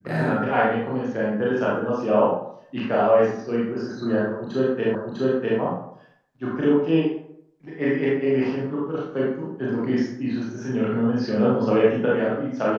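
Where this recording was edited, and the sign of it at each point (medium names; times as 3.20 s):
4.95 s: repeat of the last 0.65 s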